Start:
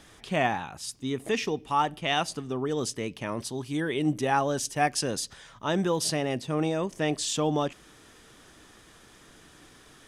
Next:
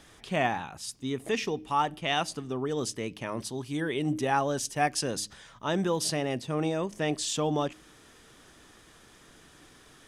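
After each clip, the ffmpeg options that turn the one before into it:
ffmpeg -i in.wav -af "bandreject=frequency=103.3:width_type=h:width=4,bandreject=frequency=206.6:width_type=h:width=4,bandreject=frequency=309.9:width_type=h:width=4,volume=-1.5dB" out.wav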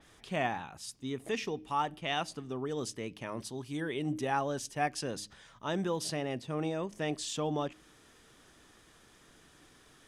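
ffmpeg -i in.wav -af "adynamicequalizer=threshold=0.00501:dfrequency=4600:dqfactor=0.7:tfrequency=4600:tqfactor=0.7:attack=5:release=100:ratio=0.375:range=3:mode=cutabove:tftype=highshelf,volume=-5dB" out.wav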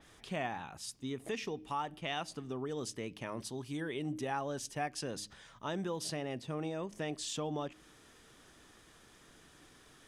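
ffmpeg -i in.wav -af "acompressor=threshold=-37dB:ratio=2" out.wav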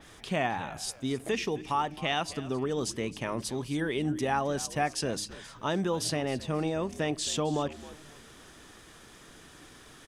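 ffmpeg -i in.wav -filter_complex "[0:a]asplit=4[link_01][link_02][link_03][link_04];[link_02]adelay=265,afreqshift=-76,volume=-17dB[link_05];[link_03]adelay=530,afreqshift=-152,volume=-26.4dB[link_06];[link_04]adelay=795,afreqshift=-228,volume=-35.7dB[link_07];[link_01][link_05][link_06][link_07]amix=inputs=4:normalize=0,volume=8dB" out.wav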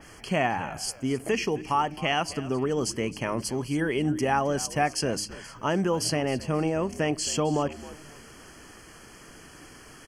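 ffmpeg -i in.wav -af "asuperstop=centerf=3700:order=12:qfactor=4.4,volume=4dB" out.wav

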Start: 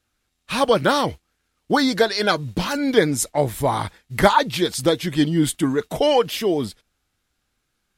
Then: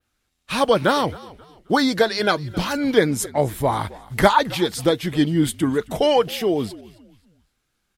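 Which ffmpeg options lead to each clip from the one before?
ffmpeg -i in.wav -filter_complex "[0:a]adynamicequalizer=threshold=0.00891:dfrequency=6800:dqfactor=0.72:tfrequency=6800:tqfactor=0.72:attack=5:release=100:ratio=0.375:range=2.5:mode=cutabove:tftype=bell,asplit=4[link_01][link_02][link_03][link_04];[link_02]adelay=266,afreqshift=-59,volume=-20.5dB[link_05];[link_03]adelay=532,afreqshift=-118,volume=-29.6dB[link_06];[link_04]adelay=798,afreqshift=-177,volume=-38.7dB[link_07];[link_01][link_05][link_06][link_07]amix=inputs=4:normalize=0" out.wav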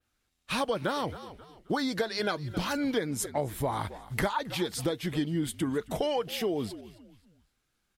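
ffmpeg -i in.wav -af "acompressor=threshold=-22dB:ratio=5,volume=-4.5dB" out.wav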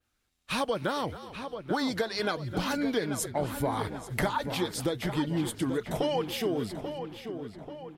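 ffmpeg -i in.wav -filter_complex "[0:a]asplit=2[link_01][link_02];[link_02]adelay=837,lowpass=frequency=3100:poles=1,volume=-8.5dB,asplit=2[link_03][link_04];[link_04]adelay=837,lowpass=frequency=3100:poles=1,volume=0.52,asplit=2[link_05][link_06];[link_06]adelay=837,lowpass=frequency=3100:poles=1,volume=0.52,asplit=2[link_07][link_08];[link_08]adelay=837,lowpass=frequency=3100:poles=1,volume=0.52,asplit=2[link_09][link_10];[link_10]adelay=837,lowpass=frequency=3100:poles=1,volume=0.52,asplit=2[link_11][link_12];[link_12]adelay=837,lowpass=frequency=3100:poles=1,volume=0.52[link_13];[link_01][link_03][link_05][link_07][link_09][link_11][link_13]amix=inputs=7:normalize=0" out.wav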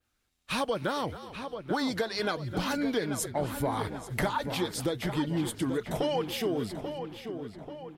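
ffmpeg -i in.wav -af "asoftclip=type=tanh:threshold=-15.5dB" out.wav

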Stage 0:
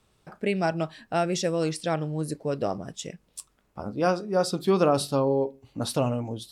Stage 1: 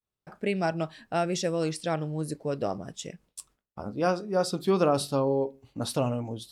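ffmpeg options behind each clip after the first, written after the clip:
ffmpeg -i in.wav -af "agate=range=-33dB:threshold=-51dB:ratio=3:detection=peak,volume=-2dB" out.wav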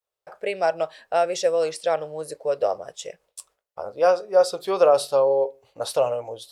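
ffmpeg -i in.wav -af "lowshelf=frequency=360:width_type=q:width=3:gain=-13,volume=2.5dB" out.wav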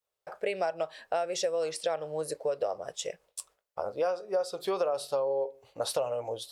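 ffmpeg -i in.wav -af "acompressor=threshold=-27dB:ratio=6" out.wav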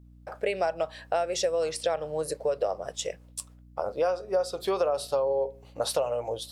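ffmpeg -i in.wav -af "aeval=exprs='val(0)+0.002*(sin(2*PI*60*n/s)+sin(2*PI*2*60*n/s)/2+sin(2*PI*3*60*n/s)/3+sin(2*PI*4*60*n/s)/4+sin(2*PI*5*60*n/s)/5)':channel_layout=same,volume=3dB" out.wav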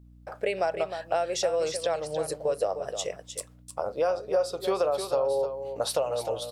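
ffmpeg -i in.wav -af "aecho=1:1:307:0.355" out.wav

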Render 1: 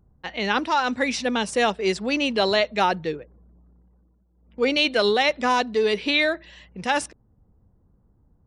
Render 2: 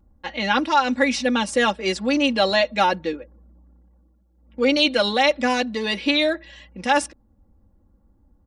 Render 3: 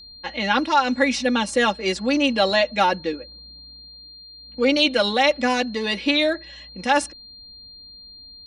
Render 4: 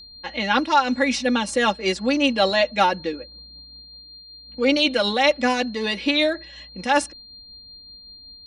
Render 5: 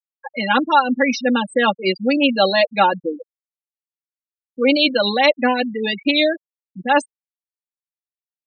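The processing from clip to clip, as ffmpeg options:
ffmpeg -i in.wav -af "aecho=1:1:3.6:0.83" out.wav
ffmpeg -i in.wav -af "aeval=exprs='val(0)+0.00891*sin(2*PI*4200*n/s)':channel_layout=same" out.wav
ffmpeg -i in.wav -af "tremolo=f=5.3:d=0.29,volume=1dB" out.wav
ffmpeg -i in.wav -af "afftfilt=real='re*gte(hypot(re,im),0.112)':imag='im*gte(hypot(re,im),0.112)':win_size=1024:overlap=0.75,volume=3.5dB" out.wav

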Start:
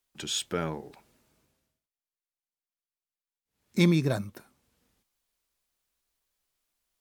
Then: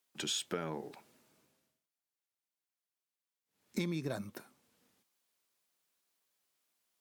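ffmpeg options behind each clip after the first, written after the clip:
ffmpeg -i in.wav -af "highpass=160,acompressor=threshold=-32dB:ratio=16" out.wav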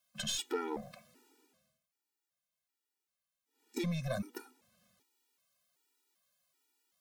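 ffmpeg -i in.wav -af "aeval=exprs='(tanh(25.1*val(0)+0.3)-tanh(0.3))/25.1':channel_layout=same,afftfilt=real='re*gt(sin(2*PI*1.3*pts/sr)*(1-2*mod(floor(b*sr/1024/250),2)),0)':imag='im*gt(sin(2*PI*1.3*pts/sr)*(1-2*mod(floor(b*sr/1024/250),2)),0)':win_size=1024:overlap=0.75,volume=6dB" out.wav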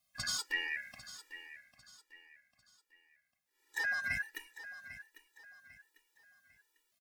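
ffmpeg -i in.wav -af "afftfilt=real='real(if(lt(b,272),68*(eq(floor(b/68),0)*1+eq(floor(b/68),1)*0+eq(floor(b/68),2)*3+eq(floor(b/68),3)*2)+mod(b,68),b),0)':imag='imag(if(lt(b,272),68*(eq(floor(b/68),0)*1+eq(floor(b/68),1)*0+eq(floor(b/68),2)*3+eq(floor(b/68),3)*2)+mod(b,68),b),0)':win_size=2048:overlap=0.75,aecho=1:1:798|1596|2394:0.2|0.0718|0.0259" out.wav

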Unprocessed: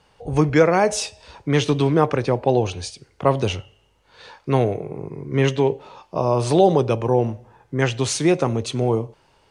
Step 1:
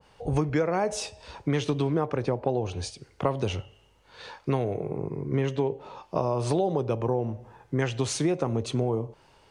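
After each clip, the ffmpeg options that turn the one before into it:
ffmpeg -i in.wav -af "acompressor=threshold=-22dB:ratio=6,adynamicequalizer=threshold=0.00501:dfrequency=1500:dqfactor=0.7:tfrequency=1500:tqfactor=0.7:attack=5:release=100:ratio=0.375:range=3.5:mode=cutabove:tftype=highshelf" out.wav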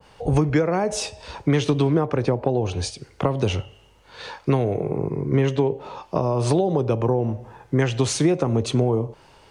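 ffmpeg -i in.wav -filter_complex "[0:a]acrossover=split=370[link_01][link_02];[link_02]acompressor=threshold=-29dB:ratio=4[link_03];[link_01][link_03]amix=inputs=2:normalize=0,volume=7dB" out.wav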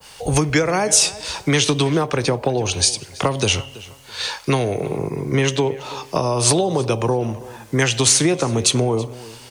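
ffmpeg -i in.wav -filter_complex "[0:a]acrossover=split=260|2300[link_01][link_02][link_03];[link_03]alimiter=limit=-22.5dB:level=0:latency=1:release=425[link_04];[link_01][link_02][link_04]amix=inputs=3:normalize=0,crystalizer=i=9.5:c=0,asplit=2[link_05][link_06];[link_06]adelay=328,lowpass=frequency=4500:poles=1,volume=-18.5dB,asplit=2[link_07][link_08];[link_08]adelay=328,lowpass=frequency=4500:poles=1,volume=0.28[link_09];[link_05][link_07][link_09]amix=inputs=3:normalize=0" out.wav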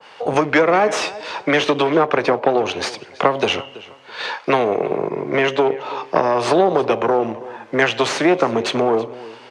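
ffmpeg -i in.wav -filter_complex "[0:a]asplit=2[link_01][link_02];[link_02]acrusher=bits=4:mode=log:mix=0:aa=0.000001,volume=-6.5dB[link_03];[link_01][link_03]amix=inputs=2:normalize=0,aeval=exprs='(tanh(2.82*val(0)+0.7)-tanh(0.7))/2.82':channel_layout=same,highpass=320,lowpass=2200,volume=6dB" out.wav

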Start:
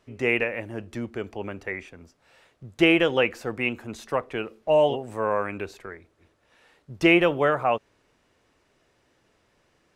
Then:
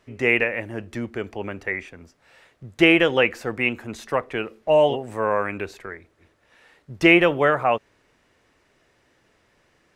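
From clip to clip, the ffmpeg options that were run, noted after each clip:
ffmpeg -i in.wav -af "equalizer=frequency=1900:width_type=o:width=0.6:gain=4,volume=2.5dB" out.wav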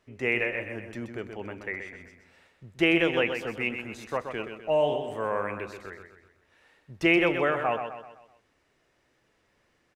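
ffmpeg -i in.wav -af "aecho=1:1:127|254|381|508|635:0.422|0.19|0.0854|0.0384|0.0173,volume=-7.5dB" out.wav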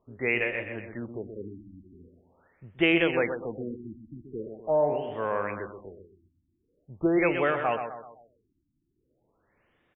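ffmpeg -i in.wav -af "afftfilt=real='re*lt(b*sr/1024,330*pow(3800/330,0.5+0.5*sin(2*PI*0.43*pts/sr)))':imag='im*lt(b*sr/1024,330*pow(3800/330,0.5+0.5*sin(2*PI*0.43*pts/sr)))':win_size=1024:overlap=0.75" out.wav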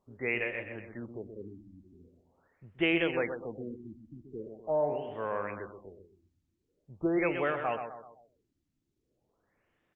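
ffmpeg -i in.wav -af "volume=-5dB" -ar 48000 -c:a libopus -b:a 24k out.opus

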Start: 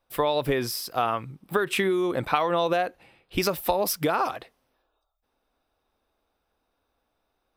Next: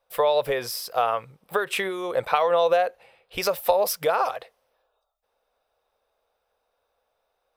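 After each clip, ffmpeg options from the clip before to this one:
ffmpeg -i in.wav -af "lowshelf=frequency=390:width_type=q:width=3:gain=-8" out.wav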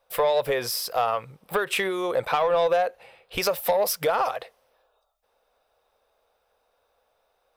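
ffmpeg -i in.wav -filter_complex "[0:a]asplit=2[link_01][link_02];[link_02]acompressor=threshold=-30dB:ratio=6,volume=1.5dB[link_03];[link_01][link_03]amix=inputs=2:normalize=0,asoftclip=type=tanh:threshold=-11.5dB,volume=-2dB" out.wav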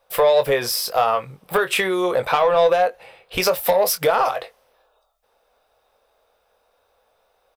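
ffmpeg -i in.wav -filter_complex "[0:a]asplit=2[link_01][link_02];[link_02]adelay=22,volume=-9dB[link_03];[link_01][link_03]amix=inputs=2:normalize=0,volume=5dB" out.wav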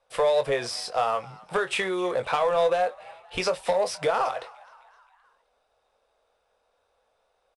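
ffmpeg -i in.wav -filter_complex "[0:a]acrossover=split=450|5000[link_01][link_02][link_03];[link_02]asplit=5[link_04][link_05][link_06][link_07][link_08];[link_05]adelay=260,afreqshift=75,volume=-21.5dB[link_09];[link_06]adelay=520,afreqshift=150,volume=-26.9dB[link_10];[link_07]adelay=780,afreqshift=225,volume=-32.2dB[link_11];[link_08]adelay=1040,afreqshift=300,volume=-37.6dB[link_12];[link_04][link_09][link_10][link_11][link_12]amix=inputs=5:normalize=0[link_13];[link_03]asoftclip=type=tanh:threshold=-25dB[link_14];[link_01][link_13][link_14]amix=inputs=3:normalize=0,volume=-6.5dB" -ar 22050 -c:a adpcm_ima_wav out.wav

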